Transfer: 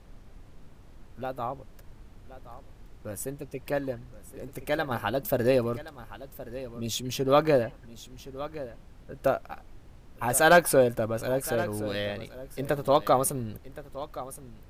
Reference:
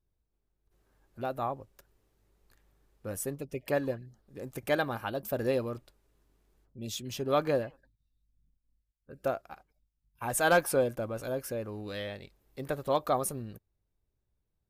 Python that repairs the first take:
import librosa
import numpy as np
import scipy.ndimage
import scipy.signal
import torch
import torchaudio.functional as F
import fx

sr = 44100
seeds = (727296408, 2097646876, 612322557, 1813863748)

y = fx.noise_reduce(x, sr, print_start_s=9.61, print_end_s=10.11, reduce_db=29.0)
y = fx.fix_echo_inverse(y, sr, delay_ms=1070, level_db=-15.0)
y = fx.fix_level(y, sr, at_s=4.91, step_db=-6.0)